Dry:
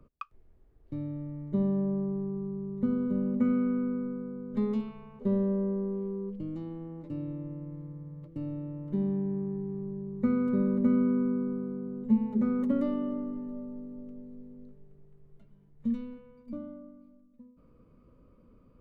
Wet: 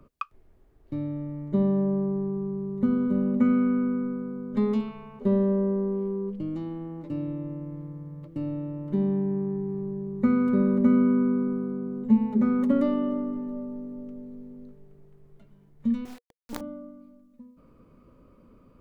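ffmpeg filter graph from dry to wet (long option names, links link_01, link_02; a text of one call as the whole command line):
ffmpeg -i in.wav -filter_complex "[0:a]asettb=1/sr,asplit=3[link_01][link_02][link_03];[link_01]atrim=end=16.054[link_04];[link_02]atrim=start=16.05:end=16.61,asetpts=PTS-STARTPTS,afade=type=in:duration=0.004:curve=qsin,afade=type=out:start_time=0.556:duration=0.004:curve=qsin,bandreject=frequency=520:width=5.9,agate=range=-33dB:threshold=-48dB:ratio=3:release=100:detection=peak,acrusher=bits=6:dc=4:mix=0:aa=0.000001[link_05];[link_03]atrim=start=16.606[link_06];[link_04][link_05]acrossfade=duration=0.004:curve1=hsin:curve2=qsin[link_07];[link_07][link_06]acrossfade=duration=0.004:curve1=qsin:curve2=hsin,lowshelf=frequency=200:gain=-6.5,bandreject=frequency=480:width=12,volume=7.5dB" out.wav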